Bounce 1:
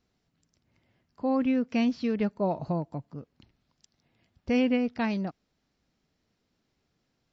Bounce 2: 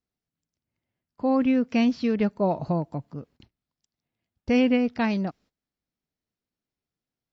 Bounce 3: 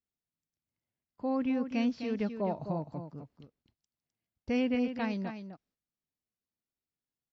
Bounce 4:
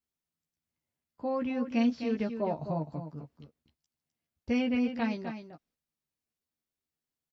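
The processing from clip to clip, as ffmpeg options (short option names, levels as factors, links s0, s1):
-af "agate=range=0.112:threshold=0.00141:ratio=16:detection=peak,volume=1.58"
-af "aecho=1:1:257:0.355,volume=0.355"
-filter_complex "[0:a]asplit=2[s0][s1];[s1]adelay=13,volume=0.631[s2];[s0][s2]amix=inputs=2:normalize=0"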